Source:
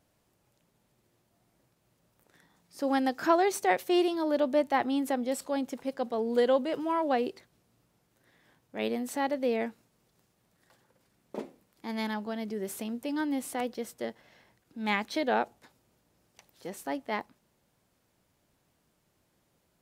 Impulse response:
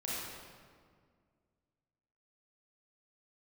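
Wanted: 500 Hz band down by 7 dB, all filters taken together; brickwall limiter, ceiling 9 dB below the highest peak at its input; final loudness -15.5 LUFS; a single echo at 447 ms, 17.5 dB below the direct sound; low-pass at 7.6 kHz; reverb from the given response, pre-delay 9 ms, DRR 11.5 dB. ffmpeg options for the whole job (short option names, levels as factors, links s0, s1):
-filter_complex "[0:a]lowpass=7600,equalizer=f=500:t=o:g=-9,alimiter=limit=0.0631:level=0:latency=1,aecho=1:1:447:0.133,asplit=2[s0][s1];[1:a]atrim=start_sample=2205,adelay=9[s2];[s1][s2]afir=irnorm=-1:irlink=0,volume=0.178[s3];[s0][s3]amix=inputs=2:normalize=0,volume=10"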